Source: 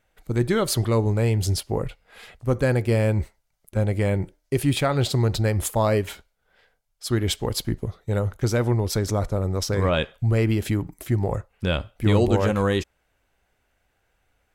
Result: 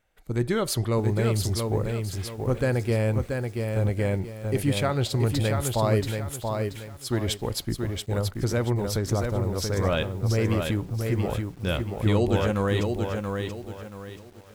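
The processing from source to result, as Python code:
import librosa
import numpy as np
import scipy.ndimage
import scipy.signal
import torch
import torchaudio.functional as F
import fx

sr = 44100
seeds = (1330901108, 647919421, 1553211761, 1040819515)

y = fx.echo_crushed(x, sr, ms=681, feedback_pct=35, bits=8, wet_db=-4.5)
y = y * 10.0 ** (-3.5 / 20.0)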